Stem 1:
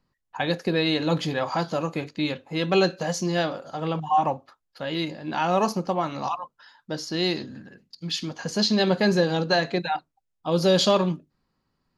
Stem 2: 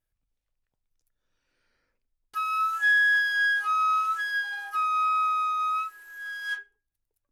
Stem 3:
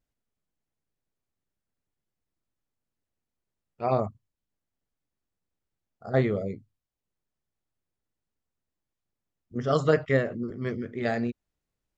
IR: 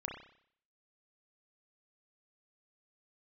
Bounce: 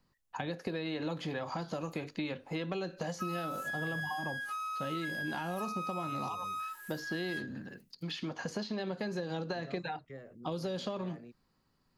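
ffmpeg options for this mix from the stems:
-filter_complex "[0:a]acompressor=threshold=-25dB:ratio=6,volume=-0.5dB[link_01];[1:a]highshelf=frequency=4300:gain=10.5,acompressor=threshold=-26dB:ratio=6,adelay=850,volume=-2dB[link_02];[2:a]acrossover=split=410|960[link_03][link_04][link_05];[link_03]acompressor=threshold=-30dB:ratio=4[link_06];[link_04]acompressor=threshold=-31dB:ratio=4[link_07];[link_05]acompressor=threshold=-39dB:ratio=4[link_08];[link_06][link_07][link_08]amix=inputs=3:normalize=0,volume=-18dB[link_09];[link_01][link_02][link_09]amix=inputs=3:normalize=0,acrossover=split=370|2700[link_10][link_11][link_12];[link_10]acompressor=threshold=-39dB:ratio=4[link_13];[link_11]acompressor=threshold=-39dB:ratio=4[link_14];[link_12]acompressor=threshold=-56dB:ratio=4[link_15];[link_13][link_14][link_15]amix=inputs=3:normalize=0,highshelf=frequency=5500:gain=5"

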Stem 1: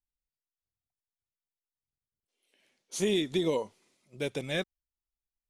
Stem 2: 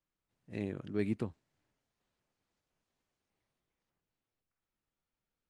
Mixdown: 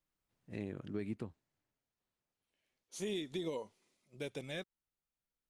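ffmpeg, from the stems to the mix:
ffmpeg -i stem1.wav -i stem2.wav -filter_complex "[0:a]volume=-7dB[link_01];[1:a]afade=type=out:start_time=1.19:duration=0.43:silence=0.421697,asplit=2[link_02][link_03];[link_03]apad=whole_len=242277[link_04];[link_01][link_04]sidechaincompress=threshold=-54dB:ratio=5:attack=6.6:release=1220[link_05];[link_05][link_02]amix=inputs=2:normalize=0,alimiter=level_in=5dB:limit=-24dB:level=0:latency=1:release=351,volume=-5dB" out.wav

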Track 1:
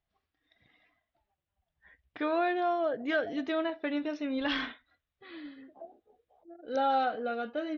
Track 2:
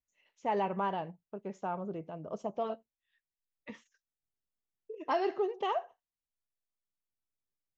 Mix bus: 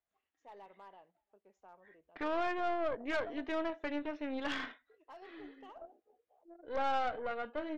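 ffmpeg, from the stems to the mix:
ffmpeg -i stem1.wav -i stem2.wav -filter_complex "[0:a]acrossover=split=240 3300:gain=0.2 1 0.178[link_01][link_02][link_03];[link_01][link_02][link_03]amix=inputs=3:normalize=0,volume=0dB[link_04];[1:a]highpass=360,asoftclip=type=hard:threshold=-25.5dB,volume=-17dB[link_05];[link_04][link_05]amix=inputs=2:normalize=0,aeval=exprs='(tanh(28.2*val(0)+0.75)-tanh(0.75))/28.2':channel_layout=same" out.wav

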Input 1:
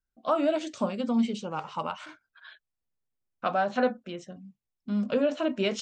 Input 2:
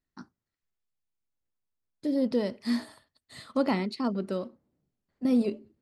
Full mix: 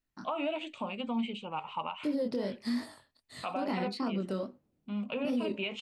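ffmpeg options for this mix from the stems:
ffmpeg -i stem1.wav -i stem2.wav -filter_complex "[0:a]firequalizer=gain_entry='entry(570,0);entry(890,9);entry(1600,-4);entry(2500,14);entry(5500,-16);entry(8300,-3)':delay=0.05:min_phase=1,volume=-7.5dB[link_01];[1:a]flanger=delay=20:depth=6.2:speed=2.4,volume=2.5dB[link_02];[link_01][link_02]amix=inputs=2:normalize=0,alimiter=level_in=0.5dB:limit=-24dB:level=0:latency=1:release=84,volume=-0.5dB" out.wav

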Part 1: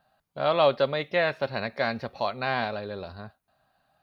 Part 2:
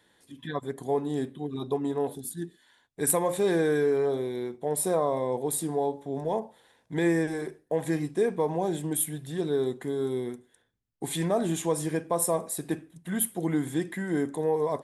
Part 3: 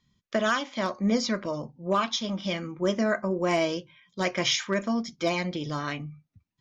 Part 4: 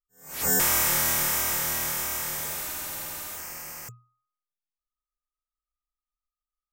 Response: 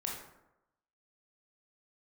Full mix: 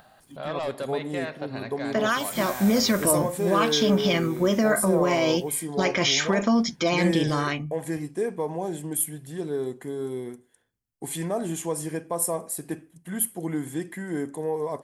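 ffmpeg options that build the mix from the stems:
-filter_complex "[0:a]aeval=exprs='0.376*sin(PI/2*1.58*val(0)/0.376)':channel_layout=same,acompressor=mode=upward:threshold=-29dB:ratio=2.5,alimiter=limit=-12.5dB:level=0:latency=1:release=120,volume=-14dB,asplit=2[link_01][link_02];[link_02]volume=-10.5dB[link_03];[1:a]highshelf=frequency=7200:gain=6,bandreject=frequency=3700:width=6.8,volume=-2dB,asplit=2[link_04][link_05];[2:a]dynaudnorm=framelen=120:gausssize=17:maxgain=11.5dB,alimiter=limit=-13dB:level=0:latency=1:release=32,adelay=1600,volume=-0.5dB[link_06];[3:a]adelay=1750,volume=-14dB[link_07];[link_05]apad=whole_len=373887[link_08];[link_07][link_08]sidechaincompress=threshold=-30dB:ratio=8:attack=49:release=1440[link_09];[4:a]atrim=start_sample=2205[link_10];[link_03][link_10]afir=irnorm=-1:irlink=0[link_11];[link_01][link_04][link_06][link_09][link_11]amix=inputs=5:normalize=0"

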